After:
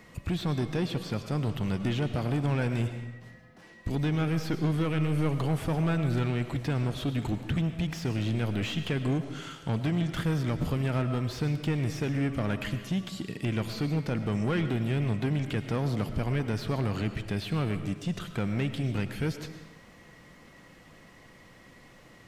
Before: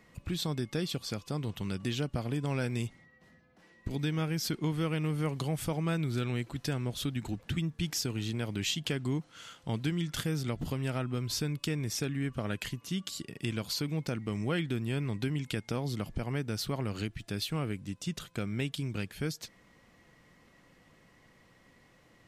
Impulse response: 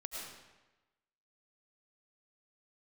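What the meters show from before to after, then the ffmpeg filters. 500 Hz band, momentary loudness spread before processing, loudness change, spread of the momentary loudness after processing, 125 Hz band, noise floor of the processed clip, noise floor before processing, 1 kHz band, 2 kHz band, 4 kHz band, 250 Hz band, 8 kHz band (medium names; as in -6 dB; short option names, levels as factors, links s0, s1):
+4.0 dB, 5 LU, +4.0 dB, 5 LU, +5.5 dB, -54 dBFS, -63 dBFS, +5.0 dB, +3.0 dB, -2.5 dB, +4.5 dB, -7.5 dB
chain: -filter_complex "[0:a]asoftclip=type=tanh:threshold=0.0299,acrossover=split=2700[s0][s1];[s1]acompressor=threshold=0.00178:ratio=4:attack=1:release=60[s2];[s0][s2]amix=inputs=2:normalize=0,asplit=2[s3][s4];[1:a]atrim=start_sample=2205[s5];[s4][s5]afir=irnorm=-1:irlink=0,volume=0.668[s6];[s3][s6]amix=inputs=2:normalize=0,volume=1.78"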